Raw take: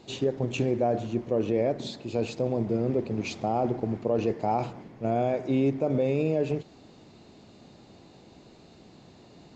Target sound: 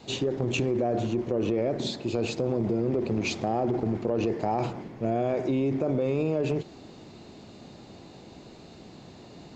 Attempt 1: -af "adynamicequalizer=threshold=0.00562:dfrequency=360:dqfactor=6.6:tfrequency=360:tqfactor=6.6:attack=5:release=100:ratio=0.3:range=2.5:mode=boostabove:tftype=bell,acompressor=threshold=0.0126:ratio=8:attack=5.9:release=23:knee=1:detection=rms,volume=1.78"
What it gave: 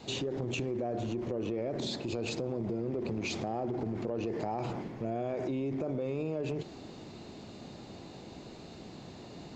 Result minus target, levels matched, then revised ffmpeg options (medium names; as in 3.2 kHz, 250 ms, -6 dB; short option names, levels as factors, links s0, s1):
compression: peak gain reduction +8 dB
-af "adynamicequalizer=threshold=0.00562:dfrequency=360:dqfactor=6.6:tfrequency=360:tqfactor=6.6:attack=5:release=100:ratio=0.3:range=2.5:mode=boostabove:tftype=bell,acompressor=threshold=0.0355:ratio=8:attack=5.9:release=23:knee=1:detection=rms,volume=1.78"